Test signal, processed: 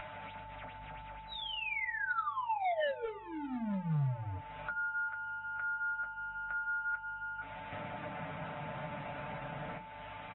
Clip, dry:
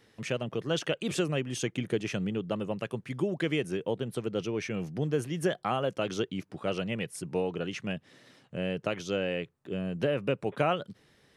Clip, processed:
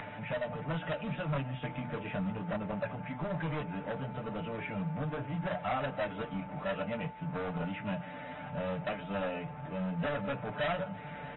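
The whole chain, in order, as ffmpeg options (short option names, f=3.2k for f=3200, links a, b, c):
-filter_complex "[0:a]aeval=exprs='val(0)+0.5*0.0168*sgn(val(0))':c=same,highpass=130,equalizer=f=220:t=q:w=4:g=8,equalizer=f=380:t=q:w=4:g=-8,equalizer=f=620:t=q:w=4:g=8,equalizer=f=1.1k:t=q:w=4:g=-7,equalizer=f=1.8k:t=q:w=4:g=-7,lowpass=f=2.1k:w=0.5412,lowpass=f=2.1k:w=1.3066,aecho=1:1:6.8:0.7,asplit=2[a][b];[b]adelay=150,highpass=300,lowpass=3.4k,asoftclip=type=hard:threshold=-16.5dB,volume=-21dB[c];[a][c]amix=inputs=2:normalize=0,aeval=exprs='val(0)+0.000708*(sin(2*PI*50*n/s)+sin(2*PI*2*50*n/s)/2+sin(2*PI*3*50*n/s)/3+sin(2*PI*4*50*n/s)/4+sin(2*PI*5*50*n/s)/5)':c=same,flanger=delay=9.6:depth=5.1:regen=-34:speed=0.38:shape=triangular,acompressor=mode=upward:threshold=-37dB:ratio=2.5,aeval=exprs='val(0)+0.00398*sin(2*PI*880*n/s)':c=same,bandreject=f=60:t=h:w=6,bandreject=f=120:t=h:w=6,bandreject=f=180:t=h:w=6,bandreject=f=240:t=h:w=6,bandreject=f=300:t=h:w=6,bandreject=f=360:t=h:w=6,bandreject=f=420:t=h:w=6,bandreject=f=480:t=h:w=6,asoftclip=type=hard:threshold=-28.5dB,equalizer=f=360:t=o:w=1.1:g=-13.5,volume=2.5dB" -ar 24000 -c:a aac -b:a 16k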